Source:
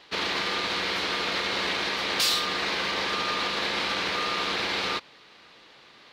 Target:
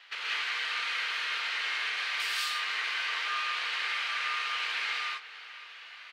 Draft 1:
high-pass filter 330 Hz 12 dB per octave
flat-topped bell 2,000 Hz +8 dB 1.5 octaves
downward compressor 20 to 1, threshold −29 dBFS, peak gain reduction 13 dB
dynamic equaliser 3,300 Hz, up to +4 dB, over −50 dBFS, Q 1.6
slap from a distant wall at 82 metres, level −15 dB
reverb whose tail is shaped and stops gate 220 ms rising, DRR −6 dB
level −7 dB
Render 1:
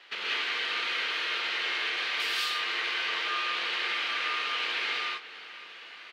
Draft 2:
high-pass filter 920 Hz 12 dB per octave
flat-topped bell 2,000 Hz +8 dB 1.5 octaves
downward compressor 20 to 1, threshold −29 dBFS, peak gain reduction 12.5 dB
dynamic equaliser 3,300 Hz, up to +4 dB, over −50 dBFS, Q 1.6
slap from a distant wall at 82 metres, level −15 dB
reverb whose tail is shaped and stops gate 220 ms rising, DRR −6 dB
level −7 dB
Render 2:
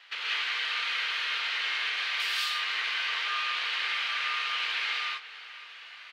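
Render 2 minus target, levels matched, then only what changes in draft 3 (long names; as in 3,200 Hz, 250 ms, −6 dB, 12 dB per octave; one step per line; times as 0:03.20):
8,000 Hz band −3.5 dB
change: dynamic equaliser 8,400 Hz, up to +4 dB, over −50 dBFS, Q 1.6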